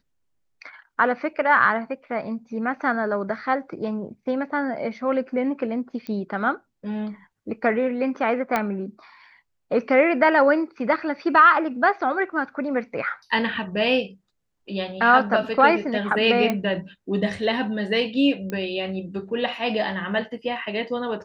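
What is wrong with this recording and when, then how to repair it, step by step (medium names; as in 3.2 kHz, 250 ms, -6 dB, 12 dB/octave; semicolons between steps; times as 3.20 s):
6.07 s: pop -20 dBFS
8.56 s: pop -9 dBFS
16.50 s: pop -10 dBFS
18.50 s: pop -17 dBFS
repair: de-click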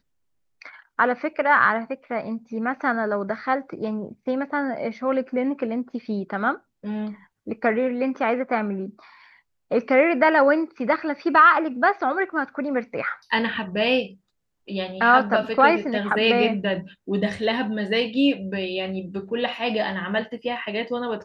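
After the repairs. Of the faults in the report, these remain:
nothing left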